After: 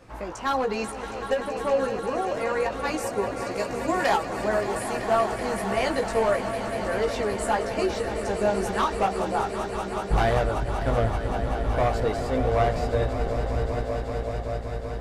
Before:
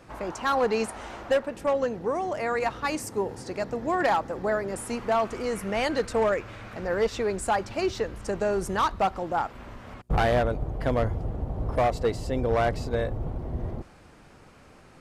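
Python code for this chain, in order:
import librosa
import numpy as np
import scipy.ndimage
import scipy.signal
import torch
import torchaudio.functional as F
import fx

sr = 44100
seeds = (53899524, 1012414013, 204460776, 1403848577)

y = fx.high_shelf(x, sr, hz=3300.0, db=10.5, at=(3.51, 4.18))
y = fx.echo_swell(y, sr, ms=191, loudest=5, wet_db=-12)
y = fx.chorus_voices(y, sr, voices=6, hz=0.47, base_ms=17, depth_ms=2.3, mix_pct=40)
y = fx.end_taper(y, sr, db_per_s=150.0)
y = y * 10.0 ** (2.5 / 20.0)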